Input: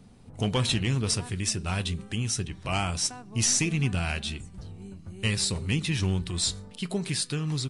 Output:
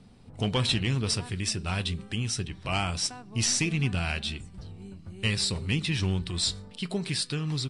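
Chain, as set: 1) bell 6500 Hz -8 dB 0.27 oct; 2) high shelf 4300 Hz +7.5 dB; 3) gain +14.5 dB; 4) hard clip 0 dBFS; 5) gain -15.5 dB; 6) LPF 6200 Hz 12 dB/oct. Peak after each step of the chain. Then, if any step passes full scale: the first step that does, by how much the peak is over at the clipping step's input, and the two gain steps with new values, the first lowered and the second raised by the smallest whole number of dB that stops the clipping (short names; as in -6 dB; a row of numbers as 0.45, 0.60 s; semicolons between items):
-15.0, -9.5, +5.0, 0.0, -15.5, -15.0 dBFS; step 3, 5.0 dB; step 3 +9.5 dB, step 5 -10.5 dB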